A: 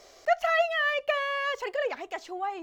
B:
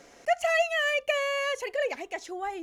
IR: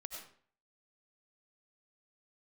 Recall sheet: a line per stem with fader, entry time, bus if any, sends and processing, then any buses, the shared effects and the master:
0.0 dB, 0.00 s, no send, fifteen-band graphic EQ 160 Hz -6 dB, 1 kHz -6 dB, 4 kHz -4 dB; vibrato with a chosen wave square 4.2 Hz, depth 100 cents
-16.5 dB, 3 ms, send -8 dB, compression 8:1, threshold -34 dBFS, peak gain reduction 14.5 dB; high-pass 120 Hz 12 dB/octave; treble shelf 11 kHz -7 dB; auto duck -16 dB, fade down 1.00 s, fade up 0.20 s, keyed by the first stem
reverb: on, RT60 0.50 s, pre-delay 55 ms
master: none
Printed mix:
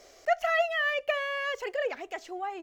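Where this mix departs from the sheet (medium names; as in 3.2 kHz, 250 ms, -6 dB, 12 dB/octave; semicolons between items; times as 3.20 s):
stem A: missing vibrato with a chosen wave square 4.2 Hz, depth 100 cents; stem B: polarity flipped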